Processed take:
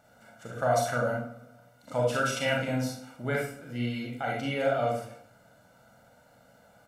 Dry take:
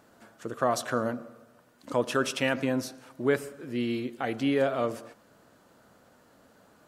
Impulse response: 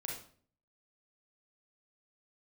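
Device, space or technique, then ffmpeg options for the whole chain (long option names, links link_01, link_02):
microphone above a desk: -filter_complex "[0:a]aecho=1:1:1.4:0.72[link_01];[1:a]atrim=start_sample=2205[link_02];[link_01][link_02]afir=irnorm=-1:irlink=0,volume=-1dB"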